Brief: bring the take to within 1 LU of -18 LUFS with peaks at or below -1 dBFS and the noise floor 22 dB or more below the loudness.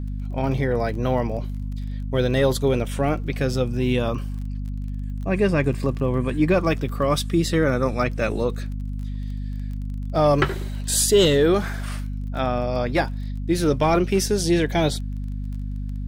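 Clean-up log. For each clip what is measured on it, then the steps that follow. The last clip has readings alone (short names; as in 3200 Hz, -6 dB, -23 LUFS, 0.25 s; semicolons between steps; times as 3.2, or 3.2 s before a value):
ticks 23/s; hum 50 Hz; harmonics up to 250 Hz; hum level -26 dBFS; loudness -23.0 LUFS; peak -6.5 dBFS; loudness target -18.0 LUFS
-> de-click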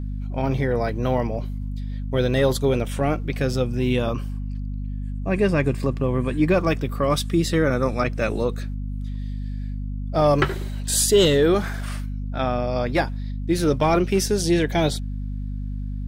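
ticks 0.50/s; hum 50 Hz; harmonics up to 250 Hz; hum level -26 dBFS
-> de-hum 50 Hz, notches 5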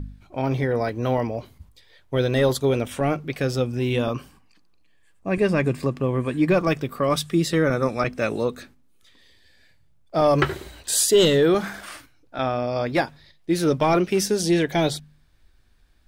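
hum none; loudness -22.5 LUFS; peak -6.5 dBFS; loudness target -18.0 LUFS
-> gain +4.5 dB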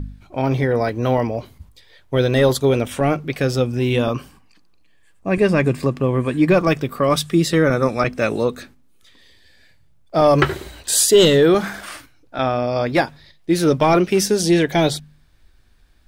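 loudness -18.0 LUFS; peak -2.0 dBFS; noise floor -52 dBFS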